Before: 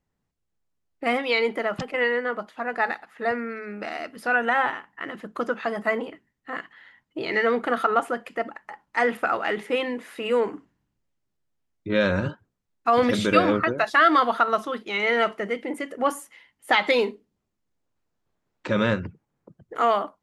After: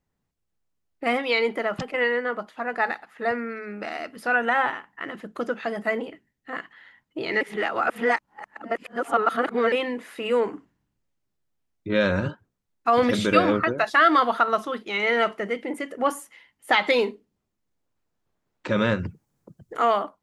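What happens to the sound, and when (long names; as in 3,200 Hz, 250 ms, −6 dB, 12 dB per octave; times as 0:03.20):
0:05.23–0:06.53: parametric band 1,100 Hz −6 dB
0:07.41–0:09.72: reverse
0:18.99–0:19.77: bass and treble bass +4 dB, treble +11 dB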